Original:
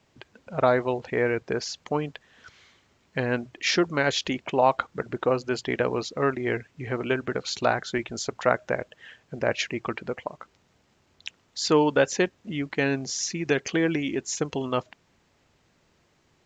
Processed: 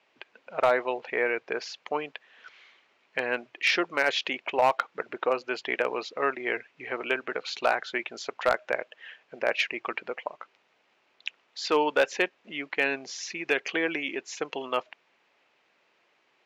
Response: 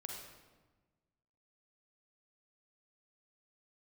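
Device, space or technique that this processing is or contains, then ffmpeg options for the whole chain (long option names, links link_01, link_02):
megaphone: -af "highpass=490,lowpass=3800,equalizer=frequency=2500:width_type=o:width=0.55:gain=5.5,asoftclip=type=hard:threshold=-13.5dB"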